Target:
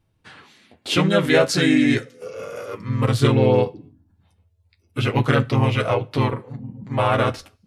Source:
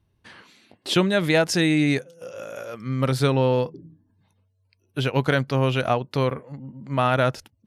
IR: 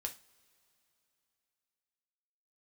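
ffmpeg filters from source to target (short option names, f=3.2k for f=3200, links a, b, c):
-filter_complex "[0:a]flanger=delay=6.2:depth=4.3:regen=-23:speed=0.34:shape=sinusoidal,asplit=2[a][b];[b]asetrate=37084,aresample=44100,atempo=1.18921,volume=-1dB[c];[a][c]amix=inputs=2:normalize=0,asplit=2[d][e];[1:a]atrim=start_sample=2205,afade=t=out:st=0.32:d=0.01,atrim=end_sample=14553[f];[e][f]afir=irnorm=-1:irlink=0,volume=-4dB[g];[d][g]amix=inputs=2:normalize=0"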